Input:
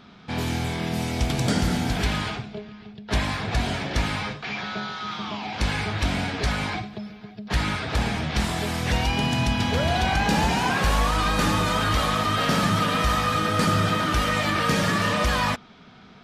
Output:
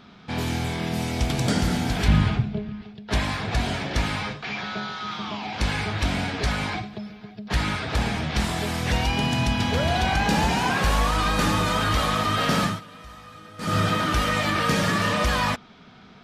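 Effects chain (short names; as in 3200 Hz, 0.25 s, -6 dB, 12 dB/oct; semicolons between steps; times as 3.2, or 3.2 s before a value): 2.08–2.82 tone controls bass +13 dB, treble -6 dB; 12.62–13.77 dip -21 dB, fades 0.19 s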